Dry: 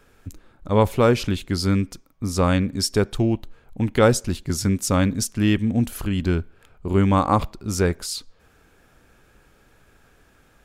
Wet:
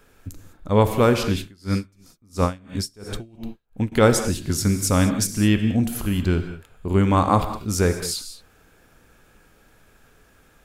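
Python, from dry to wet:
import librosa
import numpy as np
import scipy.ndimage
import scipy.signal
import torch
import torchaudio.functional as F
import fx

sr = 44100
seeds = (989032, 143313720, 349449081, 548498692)

y = fx.high_shelf(x, sr, hz=10000.0, db=6.0)
y = fx.rev_gated(y, sr, seeds[0], gate_ms=230, shape='flat', drr_db=7.5)
y = fx.tremolo_db(y, sr, hz=2.9, depth_db=31, at=(1.4, 3.92))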